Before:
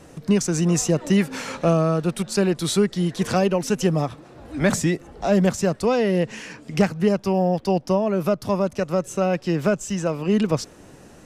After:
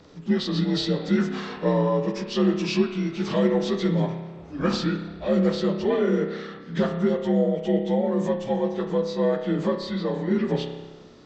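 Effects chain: frequency axis rescaled in octaves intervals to 85%; spring tank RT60 1.2 s, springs 30 ms, chirp 30 ms, DRR 5 dB; trim -2.5 dB

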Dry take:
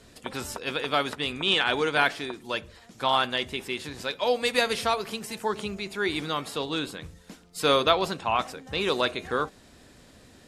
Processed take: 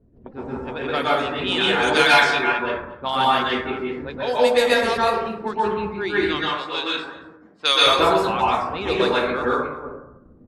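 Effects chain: chunks repeated in reverse 199 ms, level -9 dB; level-controlled noise filter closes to 310 Hz, open at -20 dBFS; 6.26–7.87 s: frequency weighting ITU-R 468; reverb removal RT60 0.67 s; 1.82–2.50 s: peaking EQ 8.9 kHz -> 2.2 kHz +14 dB 2.4 oct; delay 229 ms -23.5 dB; plate-style reverb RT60 0.82 s, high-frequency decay 0.35×, pre-delay 110 ms, DRR -7 dB; trim -1 dB

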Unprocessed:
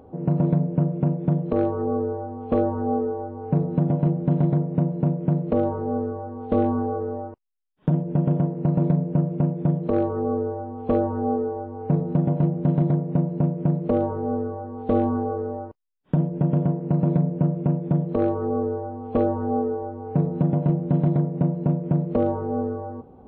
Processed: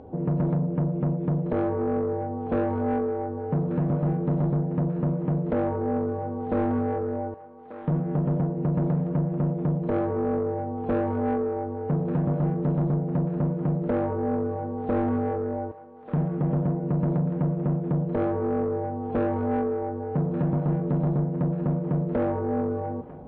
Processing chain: band-stop 1.2 kHz, Q 6.6; in parallel at -1 dB: compression, threshold -26 dBFS, peak gain reduction 10 dB; on the sum: saturation -17.5 dBFS, distortion -12 dB; distance through air 150 m; on a send: thinning echo 1188 ms, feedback 49%, high-pass 690 Hz, level -9.5 dB; on the sum: trim -2 dB

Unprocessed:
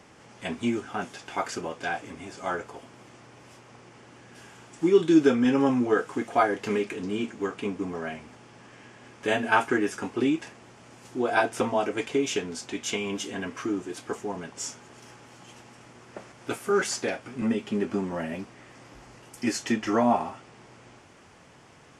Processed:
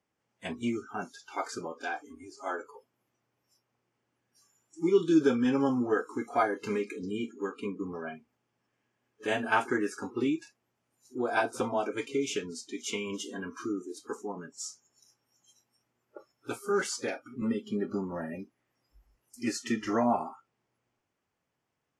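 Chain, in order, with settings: pre-echo 59 ms -19.5 dB; spectral noise reduction 25 dB; trim -4.5 dB

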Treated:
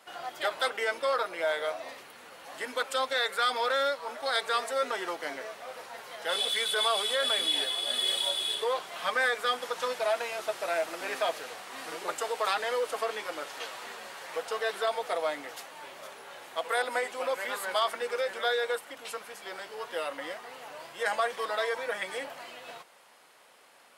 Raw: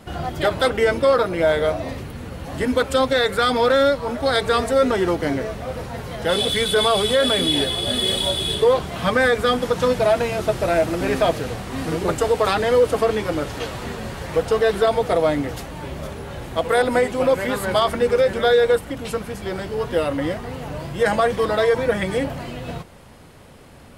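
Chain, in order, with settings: high-pass 770 Hz 12 dB/octave; trim -6.5 dB

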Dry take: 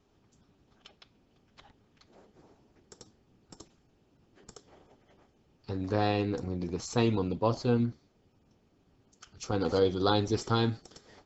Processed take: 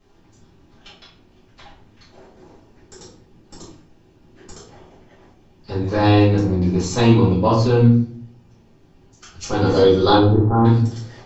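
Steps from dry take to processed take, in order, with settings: 10.15–10.65 s: low-pass 1.1 kHz 24 dB/octave; simulated room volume 61 m³, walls mixed, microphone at 2.1 m; trim +2.5 dB

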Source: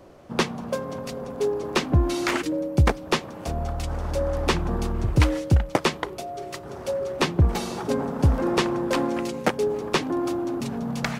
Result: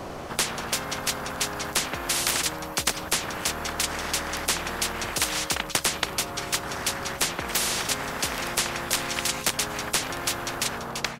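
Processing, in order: fade out at the end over 0.67 s; spectrum-flattening compressor 10:1; trim +1 dB

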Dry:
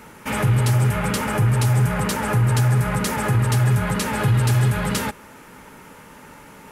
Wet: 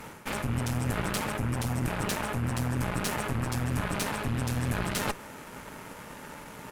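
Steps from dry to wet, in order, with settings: rattle on loud lows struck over -26 dBFS, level -25 dBFS; reverse; compression 6:1, threshold -31 dBFS, peak gain reduction 15.5 dB; reverse; Chebyshev shaper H 4 -7 dB, 7 -33 dB, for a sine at -19.5 dBFS; harmony voices -7 st -8 dB

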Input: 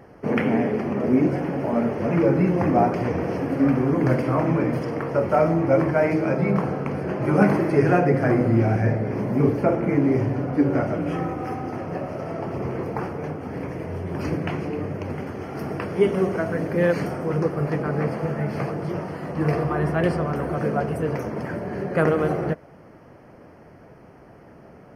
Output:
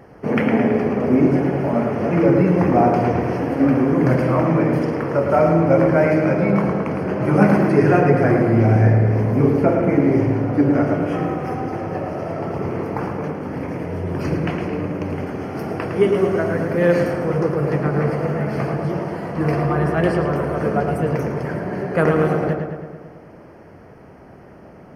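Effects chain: filtered feedback delay 109 ms, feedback 63%, low-pass 3.9 kHz, level -5 dB; trim +2.5 dB

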